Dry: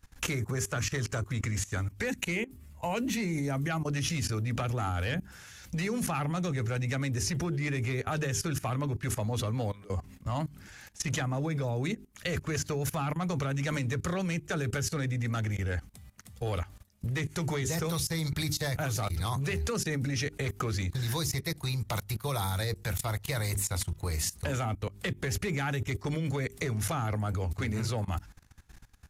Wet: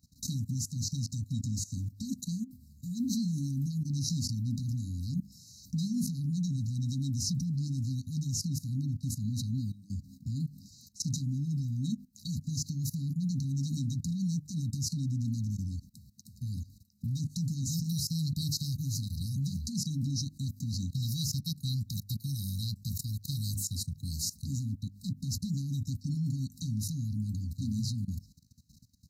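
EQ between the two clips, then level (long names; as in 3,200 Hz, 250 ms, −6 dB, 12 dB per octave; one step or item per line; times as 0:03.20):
high-pass filter 120 Hz 12 dB per octave
linear-phase brick-wall band-stop 280–3,800 Hz
parametric band 10,000 Hz −9.5 dB 0.8 octaves
+2.5 dB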